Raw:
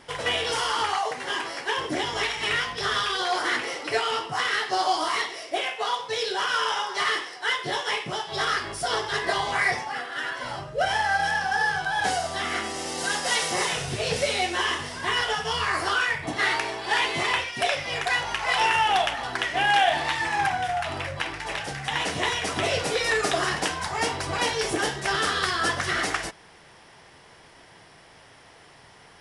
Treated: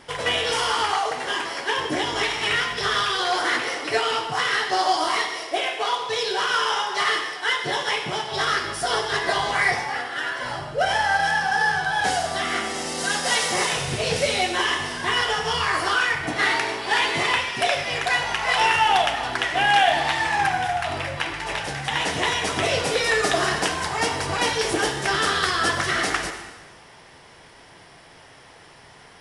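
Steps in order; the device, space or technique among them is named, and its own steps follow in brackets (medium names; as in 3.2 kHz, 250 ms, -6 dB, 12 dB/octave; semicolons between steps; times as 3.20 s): saturated reverb return (on a send at -7.5 dB: reverberation RT60 1.2 s, pre-delay 68 ms + saturation -16 dBFS, distortion -19 dB); on the sum: trim +2.5 dB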